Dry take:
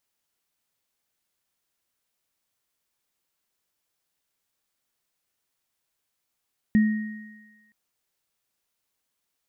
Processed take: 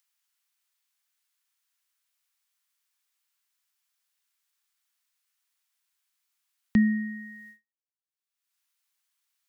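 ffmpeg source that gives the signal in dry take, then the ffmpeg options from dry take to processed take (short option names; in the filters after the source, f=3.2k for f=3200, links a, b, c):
-f lavfi -i "aevalsrc='0.211*pow(10,-3*t/1.08)*sin(2*PI*215*t)+0.0299*pow(10,-3*t/1.86)*sin(2*PI*1870*t)':d=0.97:s=44100"
-filter_complex "[0:a]agate=range=-52dB:threshold=-54dB:ratio=16:detection=peak,acrossover=split=290|920[a][b][c];[c]acompressor=mode=upward:threshold=-40dB:ratio=2.5[d];[a][b][d]amix=inputs=3:normalize=0"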